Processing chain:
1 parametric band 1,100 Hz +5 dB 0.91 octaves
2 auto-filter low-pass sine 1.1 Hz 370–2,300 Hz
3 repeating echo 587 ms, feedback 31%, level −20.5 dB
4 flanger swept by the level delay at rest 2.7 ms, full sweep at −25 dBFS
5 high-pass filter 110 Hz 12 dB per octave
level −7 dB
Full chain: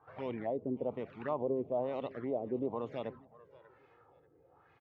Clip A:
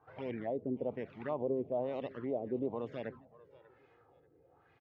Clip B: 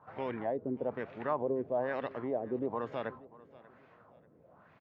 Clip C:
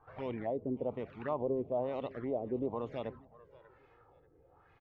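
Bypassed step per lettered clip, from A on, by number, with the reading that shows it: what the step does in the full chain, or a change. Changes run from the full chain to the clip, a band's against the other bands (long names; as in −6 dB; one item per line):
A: 1, 1 kHz band −3.0 dB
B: 4, 2 kHz band +7.5 dB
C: 5, 125 Hz band +2.0 dB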